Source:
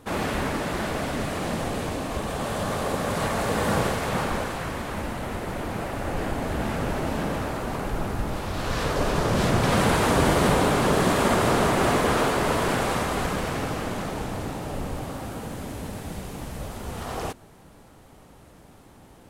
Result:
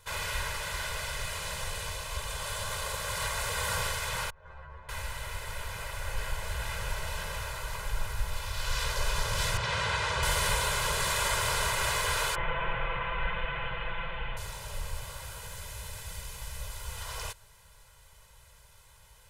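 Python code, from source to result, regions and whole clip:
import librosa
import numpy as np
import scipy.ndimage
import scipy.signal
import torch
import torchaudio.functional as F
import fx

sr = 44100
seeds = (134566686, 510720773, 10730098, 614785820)

y = fx.chain(x, sr, fx.lowpass(hz=1100.0, slope=12),
    fx.over_compress(threshold_db=-32.0, ratio=-0.5),
    fx.stiff_resonator(f0_hz=73.0, decay_s=0.26, stiffness=0.002), at=(4.3, 4.89))
y = fx.chain(y, sr, fx.highpass(hz=67.0, slope=12),
    fx.air_absorb(metres=110.0), at=(9.57, 10.23))
y = fx.chain(y, sr, fx.delta_mod(bps=16000, step_db=-34.0),
    fx.comb(ms=5.9, depth=0.94), at=(12.35, 14.37))
y = fx.tone_stack(y, sr, knobs='10-0-10')
y = y + 0.8 * np.pad(y, (int(2.0 * sr / 1000.0), 0))[:len(y)]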